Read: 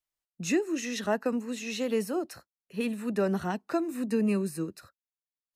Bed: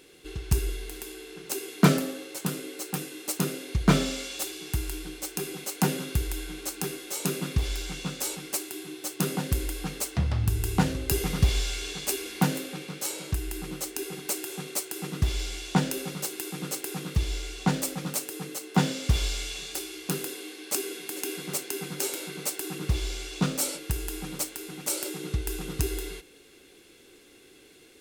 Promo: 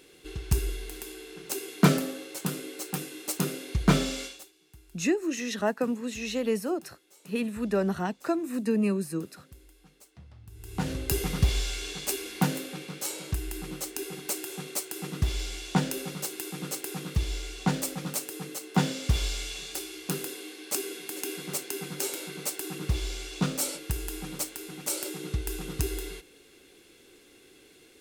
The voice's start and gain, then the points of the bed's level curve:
4.55 s, +1.0 dB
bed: 4.25 s -1 dB
4.52 s -24.5 dB
10.47 s -24.5 dB
10.92 s -1.5 dB

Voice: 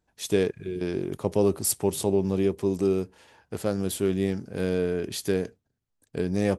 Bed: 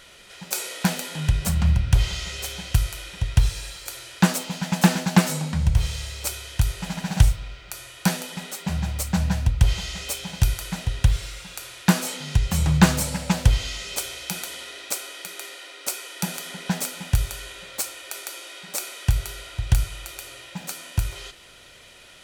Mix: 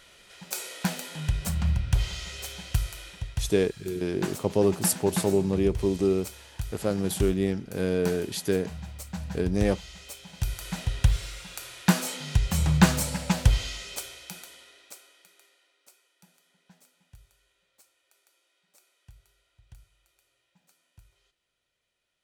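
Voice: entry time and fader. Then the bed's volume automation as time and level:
3.20 s, 0.0 dB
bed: 3.09 s -6 dB
3.38 s -13 dB
10.27 s -13 dB
10.75 s -3 dB
13.6 s -3 dB
16.17 s -32.5 dB

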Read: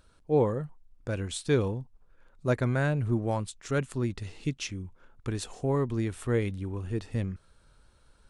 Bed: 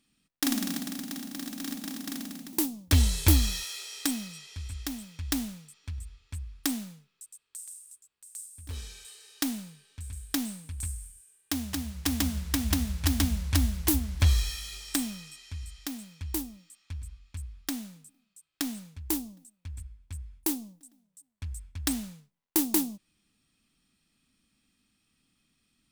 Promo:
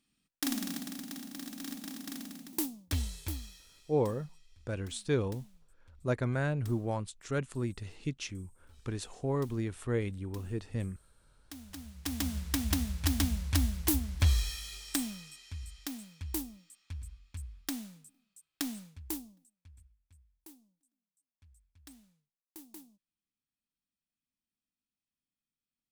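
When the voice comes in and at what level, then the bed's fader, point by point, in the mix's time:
3.60 s, -4.5 dB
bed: 2.65 s -5.5 dB
3.63 s -23 dB
11.13 s -23 dB
12.36 s -3.5 dB
18.81 s -3.5 dB
20.29 s -25 dB

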